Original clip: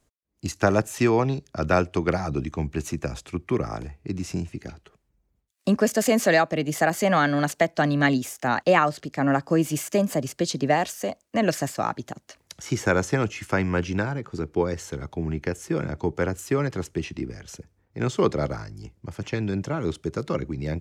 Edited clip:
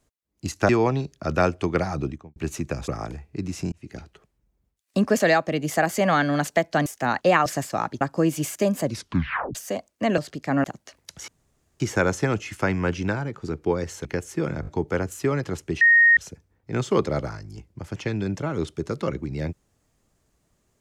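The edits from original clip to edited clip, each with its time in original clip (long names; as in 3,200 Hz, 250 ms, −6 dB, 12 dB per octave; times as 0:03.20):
0:00.69–0:01.02: remove
0:02.31–0:02.69: fade out and dull
0:03.21–0:03.59: remove
0:04.43–0:04.68: fade in
0:05.91–0:06.24: remove
0:07.90–0:08.28: remove
0:08.88–0:09.34: swap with 0:11.51–0:12.06
0:10.16: tape stop 0.72 s
0:12.70: splice in room tone 0.52 s
0:14.95–0:15.38: remove
0:15.94: stutter 0.02 s, 4 plays
0:17.08–0:17.44: beep over 1,860 Hz −11.5 dBFS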